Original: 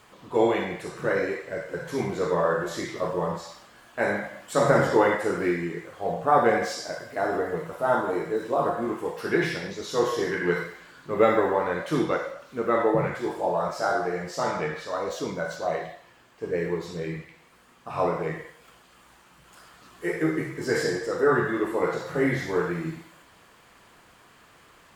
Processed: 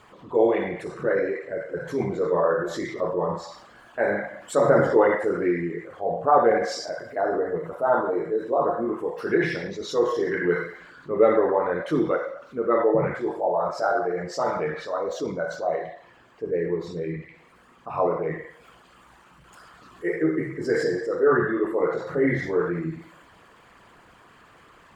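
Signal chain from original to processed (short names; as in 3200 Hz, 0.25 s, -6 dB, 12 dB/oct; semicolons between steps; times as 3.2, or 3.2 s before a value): formant sharpening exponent 1.5; gain +2 dB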